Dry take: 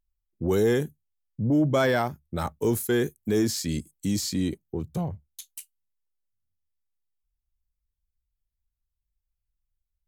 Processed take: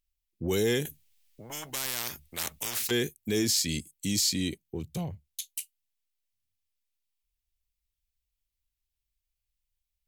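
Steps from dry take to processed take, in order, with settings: resonant high shelf 1800 Hz +9 dB, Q 1.5; 0.85–2.91 spectral compressor 10:1; gain -4.5 dB

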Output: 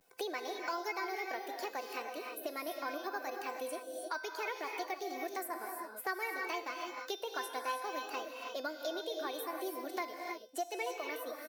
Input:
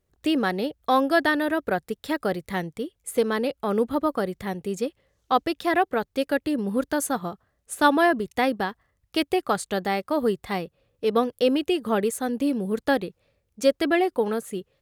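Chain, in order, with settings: bin magnitudes rounded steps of 15 dB; Bessel high-pass 400 Hz, order 2; high shelf 6500 Hz +4 dB; comb 3.5 ms, depth 51%; in parallel at -0.5 dB: compressor, threshold -29 dBFS, peak gain reduction 17.5 dB; on the sum: vibrato 0.51 Hz 59 cents; wide varispeed 1.29×; resonator 510 Hz, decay 0.45 s, mix 80%; non-linear reverb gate 0.35 s rising, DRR 4.5 dB; three-band squash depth 70%; gain -5.5 dB

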